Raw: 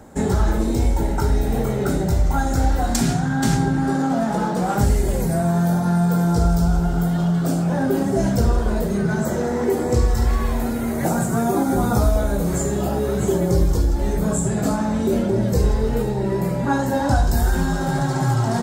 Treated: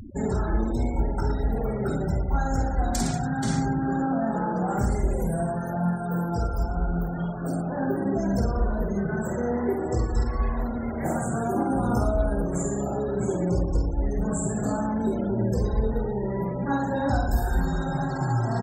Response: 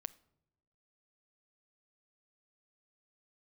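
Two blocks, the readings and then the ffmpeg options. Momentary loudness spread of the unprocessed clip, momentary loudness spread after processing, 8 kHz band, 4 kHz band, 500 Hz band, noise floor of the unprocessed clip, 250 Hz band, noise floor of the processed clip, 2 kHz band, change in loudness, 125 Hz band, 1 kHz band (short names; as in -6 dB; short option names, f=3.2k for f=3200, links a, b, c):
3 LU, 3 LU, -8.5 dB, -11.0 dB, -5.5 dB, -23 dBFS, -6.0 dB, -30 dBFS, -6.5 dB, -6.5 dB, -7.0 dB, -5.0 dB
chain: -af "aecho=1:1:50|112.5|190.6|288.3|410.4:0.631|0.398|0.251|0.158|0.1,afftfilt=real='re*gte(hypot(re,im),0.0355)':imag='im*gte(hypot(re,im),0.0355)':win_size=1024:overlap=0.75,acompressor=mode=upward:threshold=-20dB:ratio=2.5,volume=-7.5dB"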